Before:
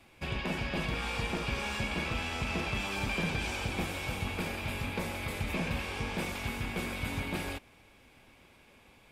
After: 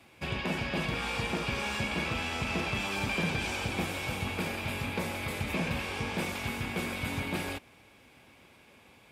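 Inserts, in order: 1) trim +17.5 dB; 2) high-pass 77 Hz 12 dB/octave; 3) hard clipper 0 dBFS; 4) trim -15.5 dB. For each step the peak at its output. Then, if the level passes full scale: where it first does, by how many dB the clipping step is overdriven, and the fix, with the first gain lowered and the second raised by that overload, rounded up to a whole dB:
-3.5 dBFS, -3.0 dBFS, -3.0 dBFS, -18.5 dBFS; nothing clips

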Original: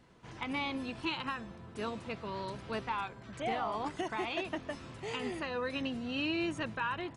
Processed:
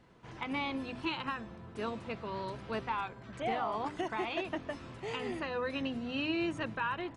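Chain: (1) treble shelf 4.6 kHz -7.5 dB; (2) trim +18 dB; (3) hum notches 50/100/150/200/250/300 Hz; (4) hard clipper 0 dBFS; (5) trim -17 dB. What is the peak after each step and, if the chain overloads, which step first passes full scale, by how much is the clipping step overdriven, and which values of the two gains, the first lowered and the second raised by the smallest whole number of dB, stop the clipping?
-23.5 dBFS, -5.5 dBFS, -5.0 dBFS, -5.0 dBFS, -22.0 dBFS; nothing clips

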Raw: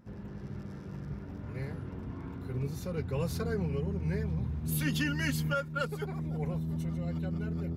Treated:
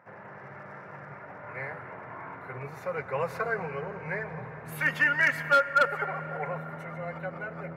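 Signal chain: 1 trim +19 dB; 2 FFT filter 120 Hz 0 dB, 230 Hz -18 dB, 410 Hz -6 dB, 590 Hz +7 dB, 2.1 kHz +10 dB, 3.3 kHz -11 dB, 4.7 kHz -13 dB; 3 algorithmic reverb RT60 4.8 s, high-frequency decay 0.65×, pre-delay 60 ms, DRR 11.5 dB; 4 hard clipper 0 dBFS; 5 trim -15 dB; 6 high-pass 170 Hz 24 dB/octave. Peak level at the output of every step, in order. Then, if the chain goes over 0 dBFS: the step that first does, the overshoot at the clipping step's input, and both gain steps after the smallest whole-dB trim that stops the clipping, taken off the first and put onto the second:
-1.5 dBFS, +5.5 dBFS, +6.0 dBFS, 0.0 dBFS, -15.0 dBFS, -11.5 dBFS; step 2, 6.0 dB; step 1 +13 dB, step 5 -9 dB

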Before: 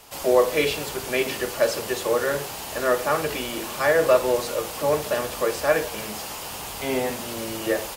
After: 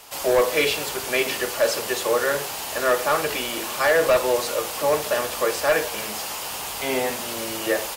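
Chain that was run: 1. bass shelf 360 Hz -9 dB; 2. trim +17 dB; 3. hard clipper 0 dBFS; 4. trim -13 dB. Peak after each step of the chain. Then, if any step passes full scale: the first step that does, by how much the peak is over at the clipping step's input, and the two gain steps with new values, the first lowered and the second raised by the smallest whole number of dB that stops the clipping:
-8.0 dBFS, +9.0 dBFS, 0.0 dBFS, -13.0 dBFS; step 2, 9.0 dB; step 2 +8 dB, step 4 -4 dB

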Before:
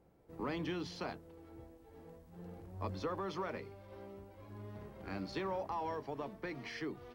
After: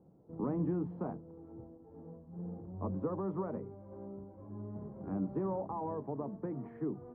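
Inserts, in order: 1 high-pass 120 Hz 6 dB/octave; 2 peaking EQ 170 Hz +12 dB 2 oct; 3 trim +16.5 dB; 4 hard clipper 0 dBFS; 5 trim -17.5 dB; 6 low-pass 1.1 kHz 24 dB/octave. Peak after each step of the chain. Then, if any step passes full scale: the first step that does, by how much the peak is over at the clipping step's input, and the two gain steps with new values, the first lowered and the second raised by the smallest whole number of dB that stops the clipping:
-26.0 dBFS, -21.0 dBFS, -4.5 dBFS, -4.5 dBFS, -22.0 dBFS, -23.5 dBFS; nothing clips

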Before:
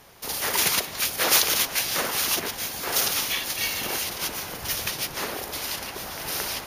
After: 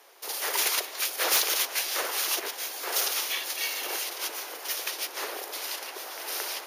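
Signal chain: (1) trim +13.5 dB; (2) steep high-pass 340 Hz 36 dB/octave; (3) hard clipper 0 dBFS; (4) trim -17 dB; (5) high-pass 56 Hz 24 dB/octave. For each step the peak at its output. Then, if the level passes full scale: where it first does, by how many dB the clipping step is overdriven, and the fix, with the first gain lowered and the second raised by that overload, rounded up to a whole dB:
+8.5 dBFS, +9.0 dBFS, 0.0 dBFS, -17.0 dBFS, -16.0 dBFS; step 1, 9.0 dB; step 1 +4.5 dB, step 4 -8 dB

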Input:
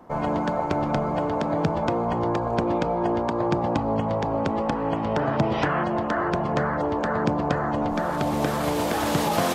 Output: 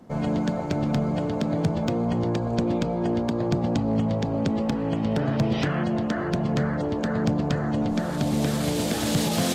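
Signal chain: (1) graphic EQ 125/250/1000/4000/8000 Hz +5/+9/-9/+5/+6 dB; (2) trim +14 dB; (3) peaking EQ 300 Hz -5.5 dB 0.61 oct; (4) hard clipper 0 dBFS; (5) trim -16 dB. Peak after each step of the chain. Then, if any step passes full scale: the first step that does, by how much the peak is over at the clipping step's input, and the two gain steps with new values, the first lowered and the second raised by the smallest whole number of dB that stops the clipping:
-2.5 dBFS, +11.5 dBFS, +10.0 dBFS, 0.0 dBFS, -16.0 dBFS; step 2, 10.0 dB; step 2 +4 dB, step 5 -6 dB

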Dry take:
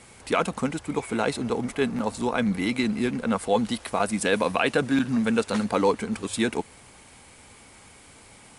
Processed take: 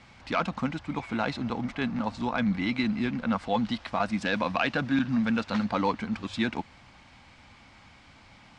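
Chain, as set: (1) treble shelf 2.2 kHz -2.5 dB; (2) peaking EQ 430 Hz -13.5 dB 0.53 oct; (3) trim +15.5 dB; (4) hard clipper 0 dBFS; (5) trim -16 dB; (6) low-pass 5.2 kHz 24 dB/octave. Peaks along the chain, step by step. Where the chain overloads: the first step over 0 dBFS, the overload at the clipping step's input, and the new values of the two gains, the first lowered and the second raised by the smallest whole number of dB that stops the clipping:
-9.0 dBFS, -10.0 dBFS, +5.5 dBFS, 0.0 dBFS, -16.0 dBFS, -15.0 dBFS; step 3, 5.5 dB; step 3 +9.5 dB, step 5 -10 dB

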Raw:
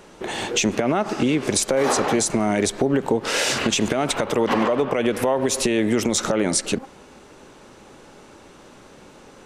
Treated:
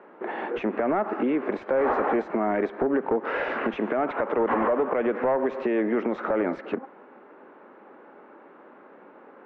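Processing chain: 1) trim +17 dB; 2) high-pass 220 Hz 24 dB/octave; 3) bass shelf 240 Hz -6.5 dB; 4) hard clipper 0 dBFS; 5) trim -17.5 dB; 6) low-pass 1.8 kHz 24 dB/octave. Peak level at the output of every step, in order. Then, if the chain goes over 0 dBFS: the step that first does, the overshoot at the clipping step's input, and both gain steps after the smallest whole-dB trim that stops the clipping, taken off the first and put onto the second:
+9.0 dBFS, +9.0 dBFS, +8.5 dBFS, 0.0 dBFS, -17.5 dBFS, -16.0 dBFS; step 1, 8.5 dB; step 1 +8 dB, step 5 -8.5 dB

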